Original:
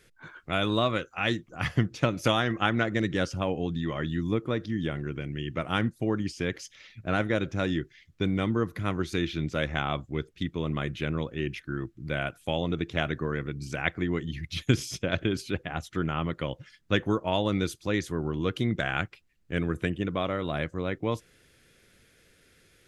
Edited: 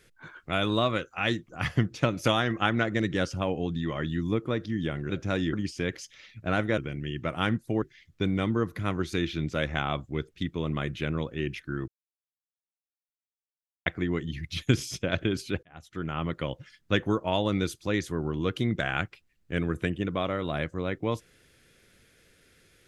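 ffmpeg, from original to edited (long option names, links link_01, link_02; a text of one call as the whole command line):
ffmpeg -i in.wav -filter_complex "[0:a]asplit=8[link_01][link_02][link_03][link_04][link_05][link_06][link_07][link_08];[link_01]atrim=end=5.102[link_09];[link_02]atrim=start=7.388:end=7.822[link_10];[link_03]atrim=start=6.138:end=7.392[link_11];[link_04]atrim=start=5.098:end=6.142[link_12];[link_05]atrim=start=7.818:end=11.88,asetpts=PTS-STARTPTS,afade=type=out:start_time=4.058:duration=0.004:curve=hsin[link_13];[link_06]atrim=start=11.88:end=13.86,asetpts=PTS-STARTPTS,volume=0[link_14];[link_07]atrim=start=13.86:end=15.63,asetpts=PTS-STARTPTS,afade=type=in:duration=0.004:curve=hsin,afade=type=out:start_time=1.766:duration=0.004:curve=hsin[link_15];[link_08]atrim=start=15.63,asetpts=PTS-STARTPTS,afade=type=in:duration=0.67[link_16];[link_09][link_10]acrossfade=duration=0.004:curve1=hsin:curve2=hsin[link_17];[link_17][link_11]acrossfade=duration=0.004:curve1=hsin:curve2=hsin[link_18];[link_18][link_12]acrossfade=duration=0.004:curve1=hsin:curve2=hsin[link_19];[link_13][link_14][link_15][link_16]concat=n=4:v=0:a=1[link_20];[link_19][link_20]acrossfade=duration=0.004:curve1=hsin:curve2=hsin" out.wav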